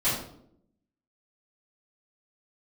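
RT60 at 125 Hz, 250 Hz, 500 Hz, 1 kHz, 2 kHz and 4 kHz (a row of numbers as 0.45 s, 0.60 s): 0.90 s, 1.0 s, 0.85 s, 0.60 s, 0.45 s, 0.45 s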